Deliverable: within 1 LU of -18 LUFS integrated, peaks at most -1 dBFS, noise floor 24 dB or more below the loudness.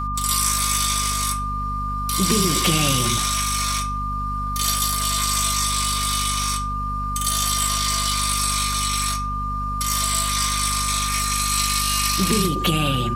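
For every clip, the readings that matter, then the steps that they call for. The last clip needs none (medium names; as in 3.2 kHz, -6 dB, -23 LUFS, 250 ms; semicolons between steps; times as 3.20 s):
hum 50 Hz; highest harmonic 250 Hz; hum level -26 dBFS; steady tone 1.2 kHz; tone level -25 dBFS; loudness -20.5 LUFS; peak level -6.0 dBFS; loudness target -18.0 LUFS
-> de-hum 50 Hz, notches 5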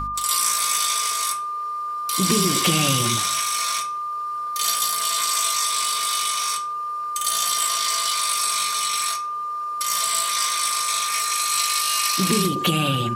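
hum not found; steady tone 1.2 kHz; tone level -25 dBFS
-> band-stop 1.2 kHz, Q 30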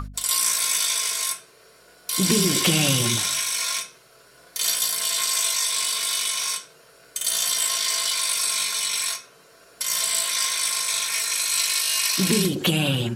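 steady tone not found; loudness -21.0 LUFS; peak level -7.0 dBFS; loudness target -18.0 LUFS
-> trim +3 dB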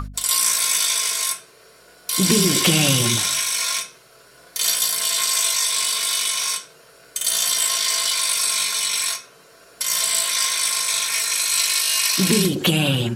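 loudness -18.0 LUFS; peak level -4.0 dBFS; noise floor -50 dBFS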